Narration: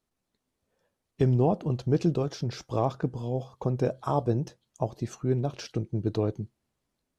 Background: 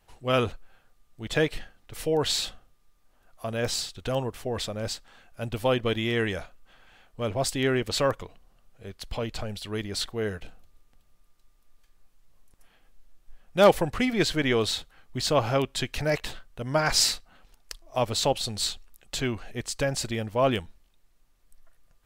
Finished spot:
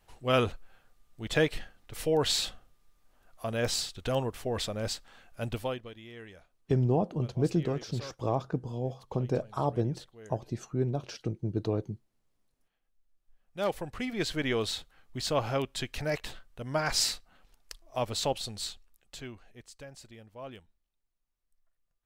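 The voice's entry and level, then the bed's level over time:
5.50 s, -3.0 dB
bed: 5.52 s -1.5 dB
5.92 s -20.5 dB
12.94 s -20.5 dB
14.40 s -5.5 dB
18.33 s -5.5 dB
19.89 s -20.5 dB

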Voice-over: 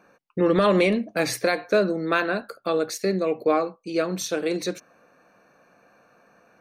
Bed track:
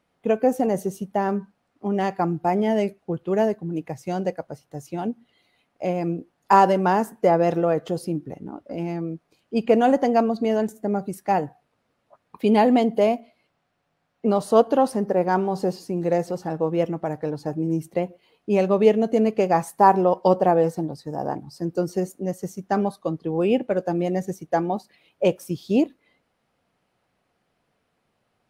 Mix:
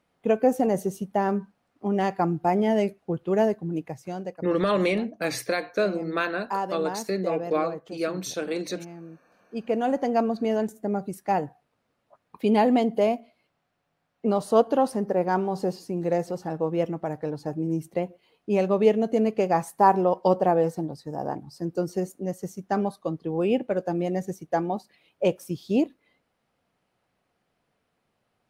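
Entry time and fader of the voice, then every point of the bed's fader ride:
4.05 s, -4.0 dB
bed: 3.74 s -1 dB
4.57 s -13.5 dB
9.18 s -13.5 dB
10.28 s -3 dB

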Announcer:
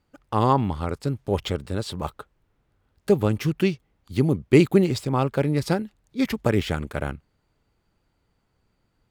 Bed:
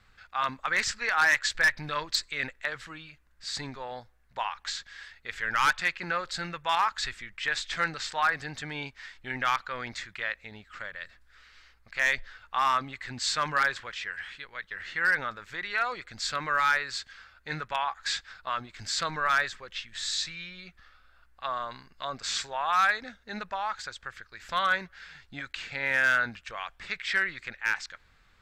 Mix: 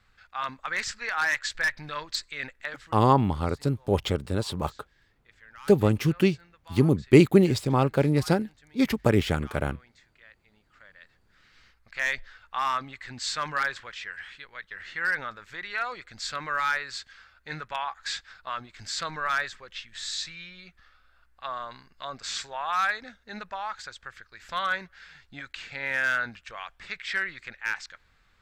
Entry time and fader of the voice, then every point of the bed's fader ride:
2.60 s, 0.0 dB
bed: 2.75 s -3 dB
3.25 s -21.5 dB
10.37 s -21.5 dB
11.64 s -2 dB

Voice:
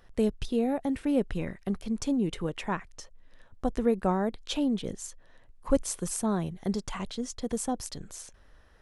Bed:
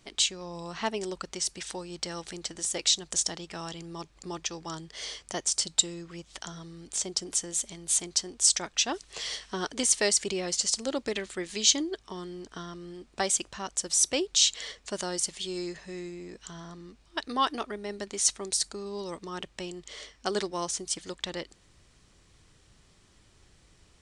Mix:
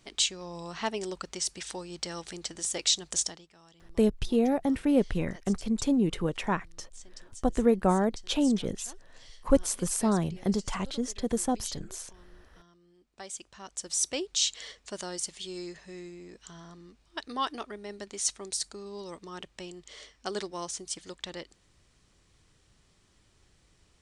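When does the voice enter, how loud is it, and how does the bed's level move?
3.80 s, +2.5 dB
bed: 3.23 s -1 dB
3.53 s -20 dB
12.91 s -20 dB
13.93 s -4.5 dB

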